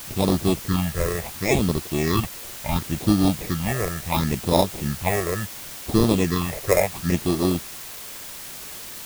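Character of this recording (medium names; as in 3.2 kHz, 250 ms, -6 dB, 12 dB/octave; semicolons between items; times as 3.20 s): aliases and images of a low sample rate 1.5 kHz, jitter 0%; phasing stages 6, 0.71 Hz, lowest notch 230–2200 Hz; a quantiser's noise floor 6-bit, dither triangular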